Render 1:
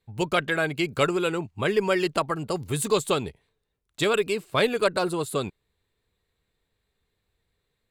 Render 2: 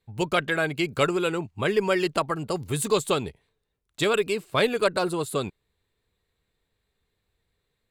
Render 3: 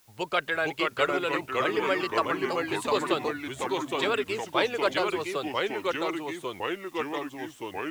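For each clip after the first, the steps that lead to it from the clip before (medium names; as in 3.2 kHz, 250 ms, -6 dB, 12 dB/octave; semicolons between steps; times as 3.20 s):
no audible change
three-band isolator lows -13 dB, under 400 Hz, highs -13 dB, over 5.5 kHz; word length cut 10-bit, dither triangular; ever faster or slower copies 437 ms, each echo -2 st, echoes 3; trim -2 dB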